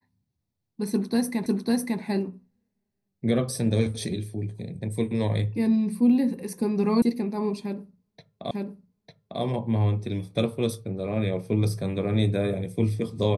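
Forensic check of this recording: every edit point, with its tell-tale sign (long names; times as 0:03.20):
0:01.46: the same again, the last 0.55 s
0:07.02: cut off before it has died away
0:08.51: the same again, the last 0.9 s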